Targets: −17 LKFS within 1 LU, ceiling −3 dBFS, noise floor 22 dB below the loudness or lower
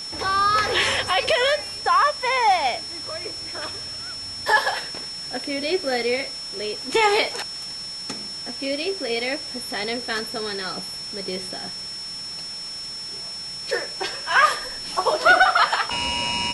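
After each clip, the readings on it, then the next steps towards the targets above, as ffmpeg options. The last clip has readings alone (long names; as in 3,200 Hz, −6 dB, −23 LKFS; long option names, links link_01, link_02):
interfering tone 5,400 Hz; level of the tone −31 dBFS; background noise floor −34 dBFS; target noise floor −45 dBFS; integrated loudness −23.0 LKFS; sample peak −6.0 dBFS; target loudness −17.0 LKFS
→ -af "bandreject=frequency=5400:width=30"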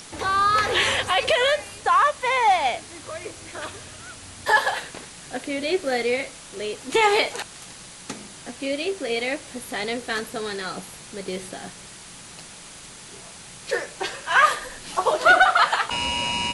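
interfering tone none found; background noise floor −43 dBFS; target noise floor −44 dBFS
→ -af "afftdn=noise_reduction=6:noise_floor=-43"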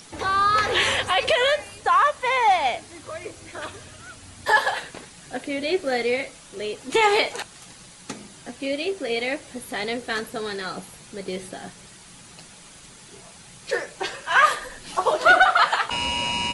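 background noise floor −47 dBFS; integrated loudness −22.0 LKFS; sample peak −6.0 dBFS; target loudness −17.0 LKFS
→ -af "volume=5dB,alimiter=limit=-3dB:level=0:latency=1"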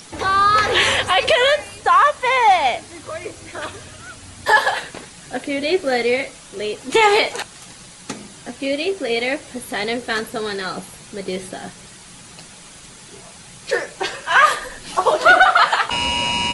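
integrated loudness −17.5 LKFS; sample peak −3.0 dBFS; background noise floor −42 dBFS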